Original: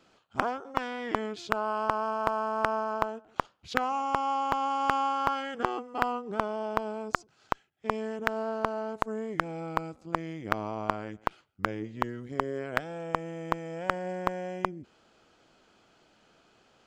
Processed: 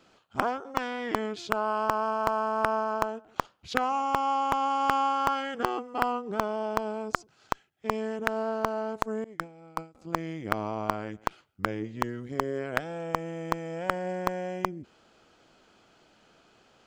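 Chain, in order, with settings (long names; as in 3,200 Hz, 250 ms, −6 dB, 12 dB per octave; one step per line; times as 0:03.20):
0:09.24–0:09.95: downward expander −26 dBFS
in parallel at −11 dB: wrap-around overflow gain 16.5 dB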